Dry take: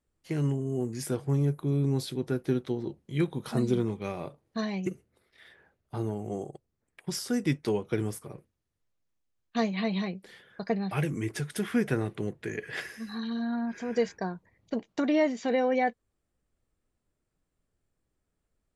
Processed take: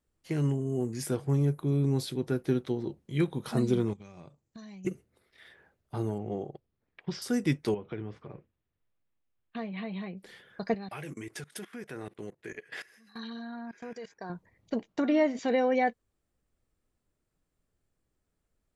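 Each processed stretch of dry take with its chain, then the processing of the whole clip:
3.93–4.85 s: FFT filter 180 Hz 0 dB, 440 Hz -8 dB, 4.3 kHz -3 dB, 7.6 kHz +9 dB, 11 kHz -29 dB + transient shaper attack 0 dB, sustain -5 dB + compression 16:1, threshold -43 dBFS
6.18–7.22 s: low-pass 4.4 kHz 24 dB/octave + loudspeaker Doppler distortion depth 0.11 ms
7.74–10.17 s: low-pass 3.4 kHz 24 dB/octave + compression 2:1, threshold -39 dBFS
10.74–14.30 s: bass shelf 240 Hz -11.5 dB + level held to a coarse grid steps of 20 dB
14.87–15.39 s: treble shelf 3.6 kHz -6.5 dB + de-hum 128.3 Hz, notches 30
whole clip: none

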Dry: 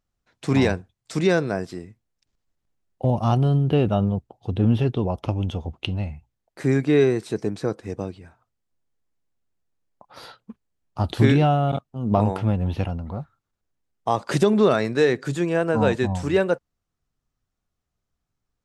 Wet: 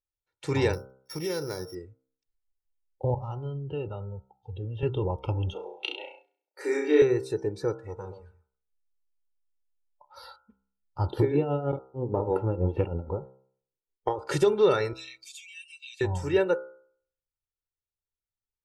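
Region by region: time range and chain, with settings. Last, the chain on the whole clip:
0.73–1.75 s: sorted samples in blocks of 8 samples + compression 4:1, threshold -23 dBFS
3.14–4.83 s: compression 2:1, threshold -33 dBFS + low-pass 8 kHz + three bands expanded up and down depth 40%
5.53–7.02 s: steep high-pass 300 Hz 48 dB/octave + flutter echo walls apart 5.7 m, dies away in 0.63 s
7.79–10.36 s: delay 123 ms -11.5 dB + transformer saturation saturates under 610 Hz
11.06–14.19 s: peaking EQ 360 Hz +13.5 dB 2.1 oct + compression 5:1, threshold -13 dBFS + tremolo 6.3 Hz, depth 72%
14.93–16.01 s: steep high-pass 2.4 kHz 48 dB/octave + compression 3:1, threshold -39 dBFS + comb 7.1 ms, depth 91%
whole clip: spectral noise reduction 16 dB; comb 2.2 ms, depth 81%; de-hum 65.4 Hz, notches 23; trim -6 dB

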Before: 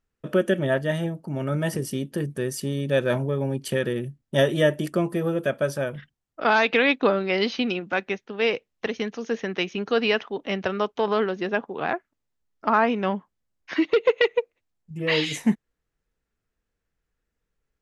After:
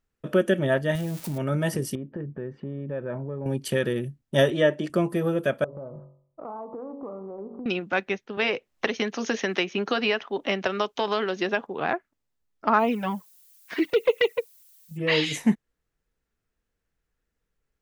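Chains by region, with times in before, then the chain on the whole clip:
0.95–1.38 s: zero-crossing glitches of -24.5 dBFS + bass shelf 190 Hz +7.5 dB + compression, threshold -26 dBFS
1.95–3.46 s: Bessel low-pass 1.3 kHz, order 4 + compression 2.5:1, threshold -32 dBFS
4.50–4.90 s: high-pass 190 Hz + distance through air 100 m
5.64–7.66 s: steep low-pass 1.2 kHz 72 dB/octave + de-hum 46.7 Hz, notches 27 + compression 4:1, threshold -36 dBFS
8.37–11.67 s: tone controls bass -6 dB, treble +2 dB + band-stop 460 Hz, Q 9.2 + three bands compressed up and down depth 100%
12.78–14.96 s: gate -42 dBFS, range -7 dB + added noise violet -52 dBFS + touch-sensitive flanger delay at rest 6.8 ms, full sweep at -15 dBFS
whole clip: none

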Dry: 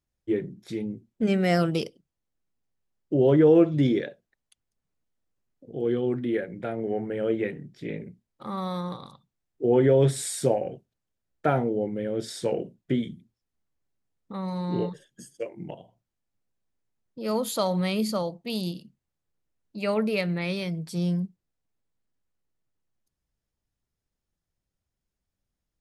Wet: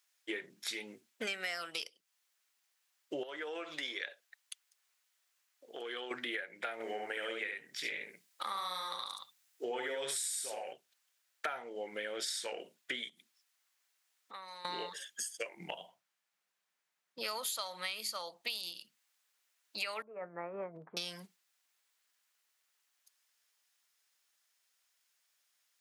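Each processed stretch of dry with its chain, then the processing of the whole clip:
3.23–6.11 s: peaking EQ 100 Hz -14 dB 2.1 oct + compression 5:1, threshold -34 dBFS
6.73–10.73 s: treble shelf 5 kHz +5.5 dB + delay 71 ms -3.5 dB
13.09–14.65 s: high-pass 190 Hz + compression, threshold -47 dBFS
15.35–17.24 s: peaking EQ 170 Hz +13.5 dB 0.4 oct + tape noise reduction on one side only decoder only
20.02–20.97 s: Bessel low-pass 750 Hz, order 8 + compressor with a negative ratio -33 dBFS
whole clip: high-pass 1.5 kHz 12 dB/octave; compression 10:1, threshold -51 dBFS; trim +15 dB

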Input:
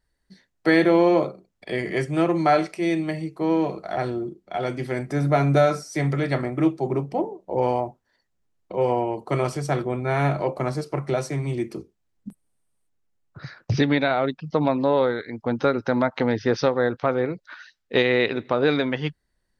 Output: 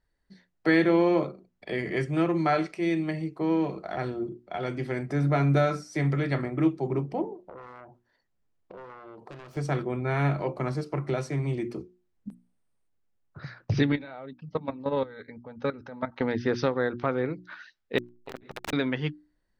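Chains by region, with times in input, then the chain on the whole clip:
7.36–9.57 s: self-modulated delay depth 0.57 ms + compression 8:1, threshold -39 dBFS
13.92–16.21 s: level held to a coarse grid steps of 19 dB + comb of notches 350 Hz
17.98–18.73 s: integer overflow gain 19.5 dB + transformer saturation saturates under 710 Hz
whole clip: low-pass 3.2 kHz 6 dB/octave; hum notches 60/120/180/240/300/360 Hz; dynamic bell 660 Hz, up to -6 dB, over -33 dBFS, Q 1.1; trim -1.5 dB

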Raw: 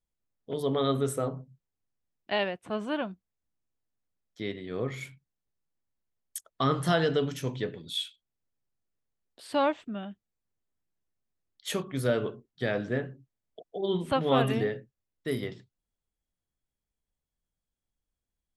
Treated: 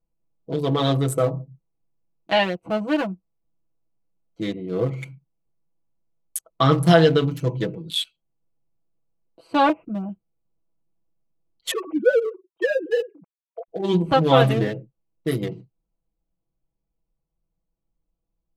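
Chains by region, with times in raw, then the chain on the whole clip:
9.69–10.09 s: steep low-pass 2.7 kHz 72 dB/octave + dynamic bell 1.4 kHz, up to -4 dB, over -46 dBFS, Q 0.98
11.71–13.68 s: formants replaced by sine waves + low-pass that closes with the level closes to 2.4 kHz, closed at -27 dBFS
whole clip: local Wiener filter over 25 samples; treble shelf 9.5 kHz +5.5 dB; comb 6.1 ms, depth 88%; trim +7 dB

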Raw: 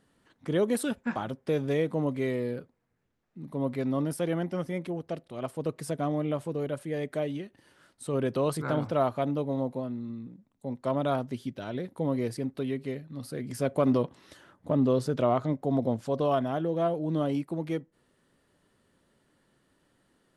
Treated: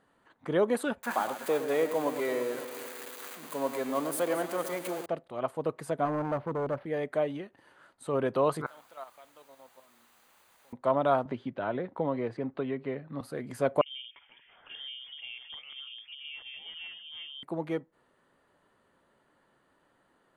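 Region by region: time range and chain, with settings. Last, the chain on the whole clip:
1.03–5.06 s: zero-crossing glitches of -25.5 dBFS + high-pass 290 Hz + echo whose repeats swap between lows and highs 112 ms, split 2.3 kHz, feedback 77%, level -9.5 dB
6.05–6.86 s: tilt EQ -2 dB/octave + hard clipper -27.5 dBFS + decimation joined by straight lines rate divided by 6×
8.66–10.73 s: differentiator + level held to a coarse grid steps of 11 dB + word length cut 10-bit, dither triangular
11.25–13.21 s: low-pass 3.1 kHz + three bands compressed up and down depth 70%
13.81–17.43 s: compression 2.5:1, threshold -44 dBFS + three bands offset in time mids, lows, highs 50/350 ms, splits 430/1300 Hz + frequency inversion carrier 3.4 kHz
whole clip: peaking EQ 970 Hz +13 dB 2.6 oct; band-stop 5.4 kHz, Q 6.4; trim -7 dB

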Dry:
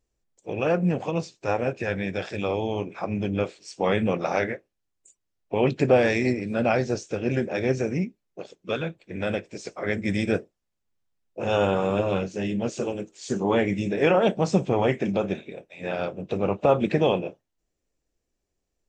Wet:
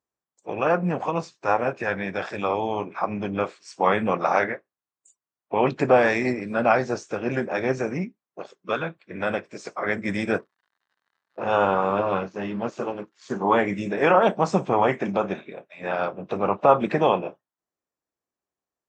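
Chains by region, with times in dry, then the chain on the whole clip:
10.38–13.42 s: companding laws mixed up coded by A + crackle 110 per s -49 dBFS + distance through air 96 m
whole clip: Bessel high-pass 160 Hz, order 2; spectral noise reduction 9 dB; FFT filter 490 Hz 0 dB, 1.1 kHz +11 dB, 2.8 kHz -2 dB

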